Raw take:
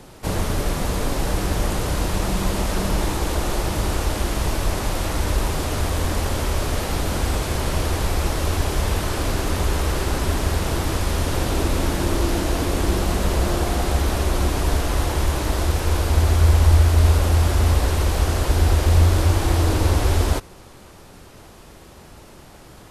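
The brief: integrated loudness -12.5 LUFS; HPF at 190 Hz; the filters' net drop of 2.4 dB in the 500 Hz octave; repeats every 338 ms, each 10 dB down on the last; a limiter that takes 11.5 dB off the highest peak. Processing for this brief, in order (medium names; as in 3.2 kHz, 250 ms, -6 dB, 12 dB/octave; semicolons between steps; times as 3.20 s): high-pass 190 Hz; peaking EQ 500 Hz -3 dB; peak limiter -24.5 dBFS; feedback delay 338 ms, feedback 32%, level -10 dB; trim +20 dB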